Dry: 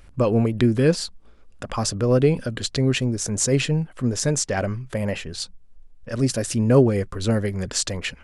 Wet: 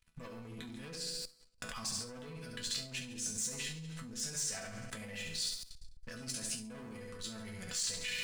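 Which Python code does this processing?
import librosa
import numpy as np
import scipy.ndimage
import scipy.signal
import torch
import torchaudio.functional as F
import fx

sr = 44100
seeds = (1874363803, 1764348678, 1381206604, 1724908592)

y = x + 10.0 ** (-16.5 / 20.0) * np.pad(x, (int(97 * sr / 1000.0), 0))[:len(x)]
y = fx.leveller(y, sr, passes=1)
y = fx.room_flutter(y, sr, wall_m=11.8, rt60_s=0.69)
y = fx.leveller(y, sr, passes=2)
y = fx.over_compress(y, sr, threshold_db=-17.0, ratio=-1.0)
y = fx.resonator_bank(y, sr, root=52, chord='sus4', decay_s=0.21)
y = fx.level_steps(y, sr, step_db=19)
y = fx.tone_stack(y, sr, knobs='5-5-5')
y = F.gain(torch.from_numpy(y), 9.5).numpy()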